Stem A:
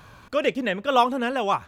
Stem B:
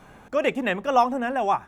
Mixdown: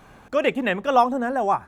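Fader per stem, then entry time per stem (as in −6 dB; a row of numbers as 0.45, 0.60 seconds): −9.0, −0.5 decibels; 0.00, 0.00 seconds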